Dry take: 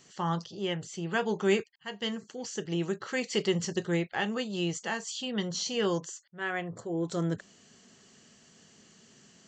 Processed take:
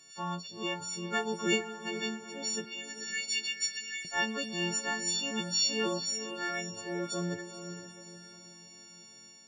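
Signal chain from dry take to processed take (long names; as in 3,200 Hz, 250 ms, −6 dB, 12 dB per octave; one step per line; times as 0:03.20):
every partial snapped to a pitch grid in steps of 4 semitones
0:02.65–0:04.05: elliptic high-pass filter 1,700 Hz, stop band 40 dB
feedback delay with all-pass diffusion 474 ms, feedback 42%, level −9 dB
automatic gain control gain up to 3 dB
level −7.5 dB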